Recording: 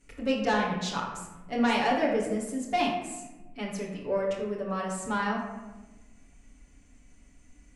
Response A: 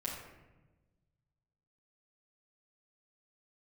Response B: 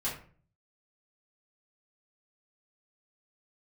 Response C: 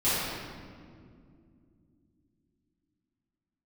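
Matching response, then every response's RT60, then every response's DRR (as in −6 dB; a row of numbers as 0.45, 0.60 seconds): A; 1.1, 0.45, 2.3 seconds; −6.5, −9.5, −15.0 decibels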